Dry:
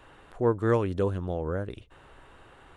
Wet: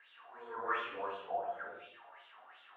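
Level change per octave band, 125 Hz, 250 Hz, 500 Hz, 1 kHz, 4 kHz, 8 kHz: under -35 dB, -26.0 dB, -14.5 dB, -2.5 dB, -0.5 dB, n/a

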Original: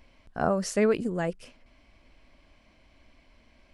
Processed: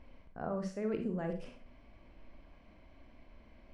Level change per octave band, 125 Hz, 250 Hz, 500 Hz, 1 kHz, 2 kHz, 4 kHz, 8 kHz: -7.0 dB, -8.0 dB, -11.5 dB, -12.0 dB, -14.5 dB, -16.0 dB, under -20 dB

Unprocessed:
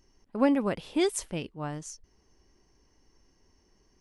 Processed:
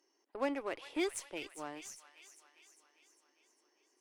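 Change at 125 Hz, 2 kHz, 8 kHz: -25.5, -4.0, -8.0 dB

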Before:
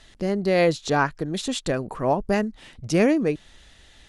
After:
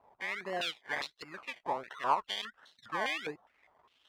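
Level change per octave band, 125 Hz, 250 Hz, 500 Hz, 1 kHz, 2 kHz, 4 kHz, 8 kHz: -28.0, -26.0, -19.0, -6.5, -7.0, -4.5, -16.5 dB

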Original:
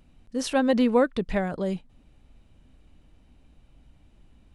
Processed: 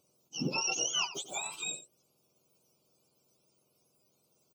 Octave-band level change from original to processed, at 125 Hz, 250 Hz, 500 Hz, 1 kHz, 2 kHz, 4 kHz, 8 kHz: -9.0 dB, -18.0 dB, -20.5 dB, -10.5 dB, -4.5 dB, +5.5 dB, n/a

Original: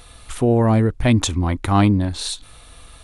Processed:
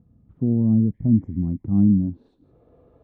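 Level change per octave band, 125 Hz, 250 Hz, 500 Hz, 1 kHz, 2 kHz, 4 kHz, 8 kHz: -4.0 dB, +0.5 dB, -15.5 dB, under -25 dB, under -40 dB, under -40 dB, under -40 dB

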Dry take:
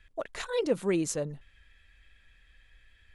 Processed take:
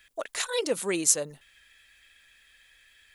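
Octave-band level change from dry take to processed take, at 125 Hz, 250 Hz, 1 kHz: -7.0, -3.0, +2.5 dB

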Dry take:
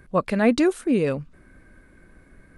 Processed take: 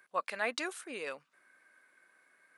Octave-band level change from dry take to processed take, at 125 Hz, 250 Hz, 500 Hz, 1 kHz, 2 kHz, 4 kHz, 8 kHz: -35.0, -27.0, -17.5, -8.5, -6.0, -5.5, -5.5 dB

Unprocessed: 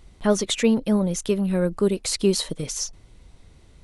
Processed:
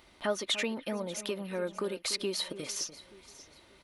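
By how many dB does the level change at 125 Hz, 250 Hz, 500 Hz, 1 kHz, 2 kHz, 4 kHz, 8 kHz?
-18.5, -16.5, -11.0, -6.5, -3.0, -4.5, -9.0 dB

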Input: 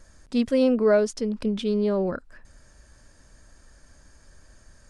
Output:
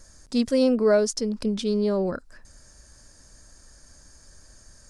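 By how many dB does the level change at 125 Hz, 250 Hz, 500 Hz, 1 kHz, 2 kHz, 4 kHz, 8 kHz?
0.0, 0.0, 0.0, -0.5, -1.0, +4.0, +8.0 dB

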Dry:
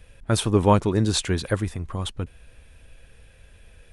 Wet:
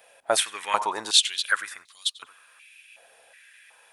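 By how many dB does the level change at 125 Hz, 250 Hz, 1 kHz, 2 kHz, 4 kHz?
under -35 dB, -22.0 dB, 0.0 dB, +7.0 dB, +8.0 dB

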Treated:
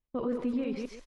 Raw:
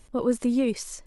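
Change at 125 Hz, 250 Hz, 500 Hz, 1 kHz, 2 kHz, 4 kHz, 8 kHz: n/a, -7.0 dB, -7.0 dB, -4.5 dB, -6.5 dB, -11.0 dB, under -20 dB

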